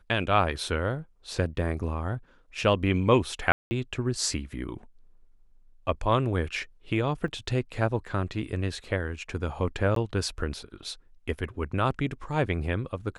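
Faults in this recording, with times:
0:03.52–0:03.71: drop-out 190 ms
0:07.28: drop-out 2.5 ms
0:09.95–0:09.96: drop-out 13 ms

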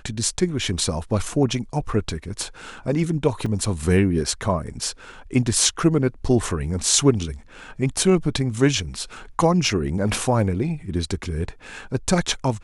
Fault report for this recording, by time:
0:03.46: drop-out 4.2 ms

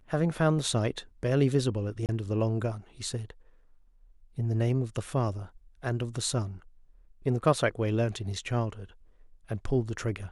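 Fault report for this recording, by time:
0:02.06–0:02.09: drop-out 28 ms

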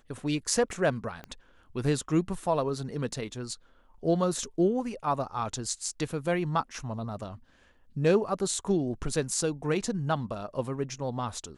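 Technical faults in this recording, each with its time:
0:01.24: click −26 dBFS

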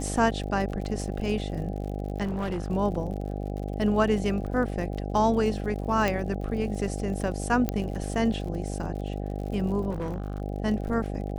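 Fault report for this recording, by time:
mains buzz 50 Hz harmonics 16 −32 dBFS
surface crackle 55 per second −36 dBFS
0:02.23–0:02.71: clipping −26 dBFS
0:06.08: click −12 dBFS
0:07.69: click −13 dBFS
0:09.90–0:10.42: clipping −27 dBFS

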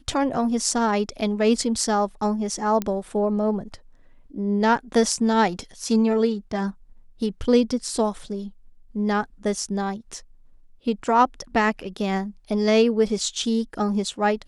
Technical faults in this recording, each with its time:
0:02.82: click −12 dBFS

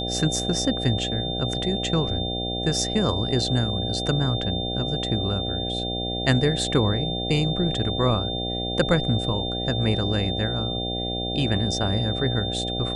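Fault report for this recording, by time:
mains buzz 60 Hz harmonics 13 −30 dBFS
whistle 3,600 Hz −29 dBFS

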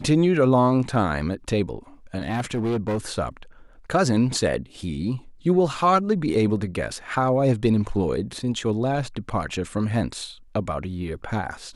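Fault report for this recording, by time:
0:02.20–0:02.98: clipping −20.5 dBFS

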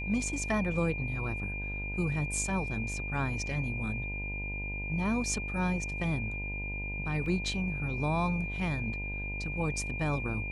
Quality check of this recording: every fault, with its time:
mains buzz 50 Hz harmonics 20 −38 dBFS
whistle 2,400 Hz −37 dBFS
0:07.26: drop-out 2.4 ms

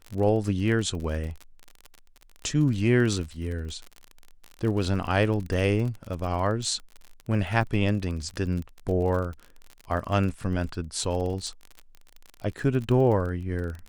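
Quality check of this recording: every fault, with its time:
surface crackle 37 per second −32 dBFS

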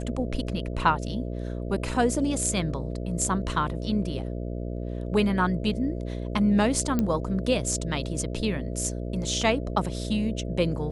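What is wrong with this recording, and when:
mains buzz 60 Hz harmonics 11 −32 dBFS
0:06.99: click −13 dBFS

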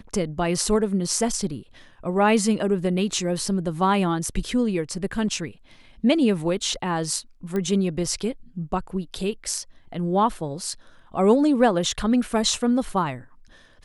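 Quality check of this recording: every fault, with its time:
0:07.56: click −16 dBFS

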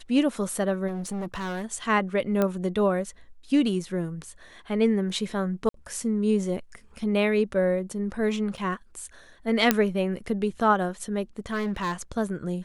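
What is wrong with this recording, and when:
0:00.87–0:01.65: clipping −28.5 dBFS
0:02.42: click −12 dBFS
0:05.69–0:05.74: drop-out 53 ms
0:08.57–0:08.58: drop-out 6.8 ms
0:09.71: click −3 dBFS
0:11.39–0:11.94: clipping −24 dBFS

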